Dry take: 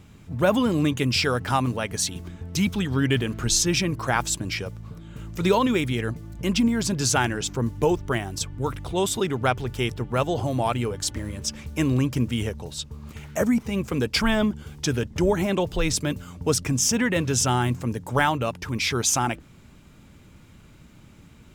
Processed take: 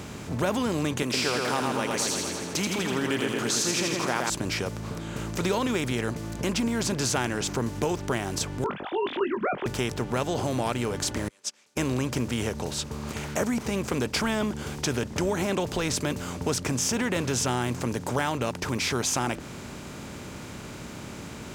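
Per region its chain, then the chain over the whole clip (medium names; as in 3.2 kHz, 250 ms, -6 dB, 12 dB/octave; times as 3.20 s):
1.02–4.30 s: high-pass 250 Hz + two-band feedback delay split 2.6 kHz, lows 116 ms, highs 81 ms, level -4 dB
8.64–9.66 s: formants replaced by sine waves + doubling 20 ms -7.5 dB
11.28–11.77 s: band-pass 330–6500 Hz + differentiator + upward expansion 2.5:1, over -49 dBFS
whole clip: spectral levelling over time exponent 0.6; high-pass 58 Hz; compression 2:1, threshold -21 dBFS; trim -4.5 dB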